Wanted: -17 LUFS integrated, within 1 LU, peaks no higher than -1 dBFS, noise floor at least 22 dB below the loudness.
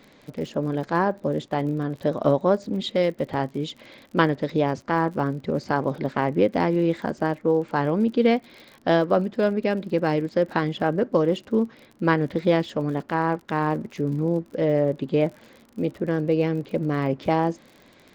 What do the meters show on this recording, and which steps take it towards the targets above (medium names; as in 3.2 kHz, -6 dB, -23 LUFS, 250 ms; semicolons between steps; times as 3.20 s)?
tick rate 51 per s; loudness -24.0 LUFS; peak level -4.5 dBFS; loudness target -17.0 LUFS
-> de-click; trim +7 dB; peak limiter -1 dBFS